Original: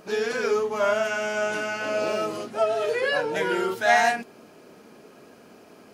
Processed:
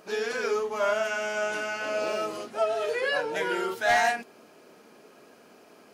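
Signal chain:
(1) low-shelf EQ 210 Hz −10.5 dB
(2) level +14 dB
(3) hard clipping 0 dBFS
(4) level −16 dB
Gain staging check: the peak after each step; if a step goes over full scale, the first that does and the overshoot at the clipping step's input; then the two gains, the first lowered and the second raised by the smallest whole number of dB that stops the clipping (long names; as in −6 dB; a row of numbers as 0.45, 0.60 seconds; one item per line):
−6.5, +7.5, 0.0, −16.0 dBFS
step 2, 7.5 dB
step 2 +6 dB, step 4 −8 dB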